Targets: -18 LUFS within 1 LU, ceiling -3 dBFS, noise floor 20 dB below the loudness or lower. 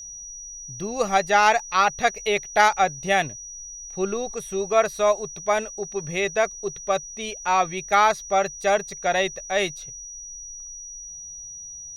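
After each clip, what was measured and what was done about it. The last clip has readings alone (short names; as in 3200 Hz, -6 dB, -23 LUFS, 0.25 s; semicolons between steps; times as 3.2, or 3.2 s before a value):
steady tone 5800 Hz; tone level -36 dBFS; loudness -23.0 LUFS; peak -4.0 dBFS; loudness target -18.0 LUFS
-> notch 5800 Hz, Q 30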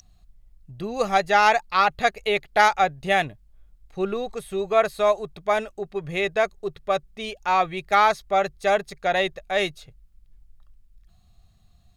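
steady tone none; loudness -23.0 LUFS; peak -4.5 dBFS; loudness target -18.0 LUFS
-> gain +5 dB; limiter -3 dBFS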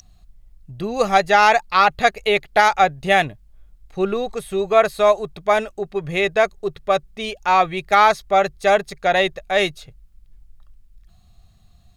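loudness -18.5 LUFS; peak -3.0 dBFS; noise floor -53 dBFS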